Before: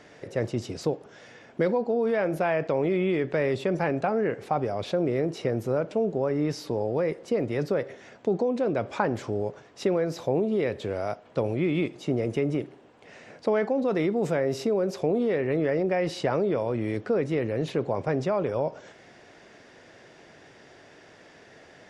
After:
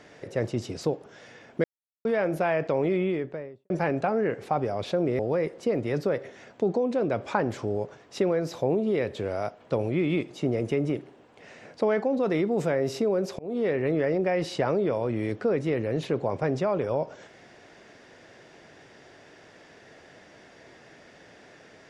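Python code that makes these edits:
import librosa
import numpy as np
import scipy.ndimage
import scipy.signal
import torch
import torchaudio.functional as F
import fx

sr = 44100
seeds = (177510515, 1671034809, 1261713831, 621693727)

y = fx.studio_fade_out(x, sr, start_s=2.87, length_s=0.83)
y = fx.edit(y, sr, fx.silence(start_s=1.64, length_s=0.41),
    fx.cut(start_s=5.19, length_s=1.65),
    fx.fade_in_span(start_s=15.04, length_s=0.26), tone=tone)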